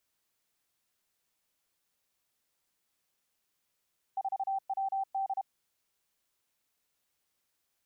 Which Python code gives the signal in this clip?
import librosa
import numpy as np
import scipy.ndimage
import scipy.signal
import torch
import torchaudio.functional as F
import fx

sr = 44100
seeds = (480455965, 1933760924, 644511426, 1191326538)

y = fx.morse(sr, text='4WD', wpm=32, hz=778.0, level_db=-29.0)